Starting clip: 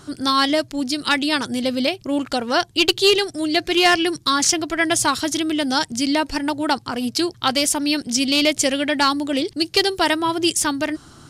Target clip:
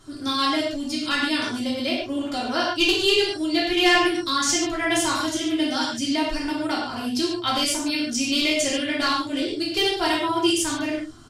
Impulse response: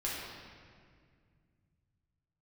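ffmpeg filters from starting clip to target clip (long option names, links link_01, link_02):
-filter_complex "[0:a]aecho=1:1:2.9:0.49[link_01];[1:a]atrim=start_sample=2205,afade=type=out:start_time=0.28:duration=0.01,atrim=end_sample=12789,asetrate=66150,aresample=44100[link_02];[link_01][link_02]afir=irnorm=-1:irlink=0,volume=-4.5dB"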